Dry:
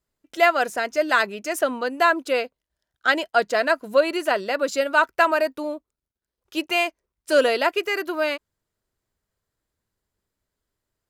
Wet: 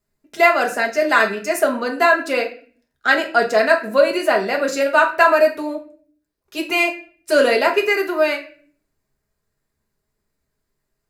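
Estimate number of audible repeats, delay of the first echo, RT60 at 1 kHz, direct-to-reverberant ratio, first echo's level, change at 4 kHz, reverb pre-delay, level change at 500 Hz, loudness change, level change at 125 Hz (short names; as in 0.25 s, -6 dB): none, none, 0.40 s, 0.0 dB, none, +2.0 dB, 4 ms, +5.0 dB, +5.0 dB, n/a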